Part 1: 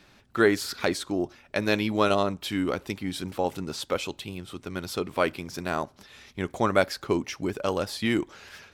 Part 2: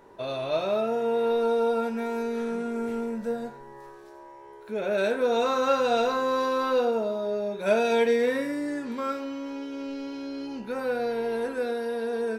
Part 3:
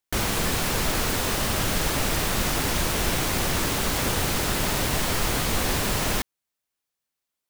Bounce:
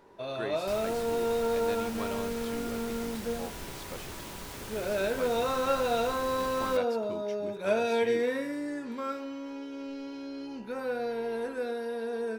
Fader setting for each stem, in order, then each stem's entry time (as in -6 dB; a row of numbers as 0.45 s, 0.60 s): -16.5 dB, -4.5 dB, -17.5 dB; 0.00 s, 0.00 s, 0.55 s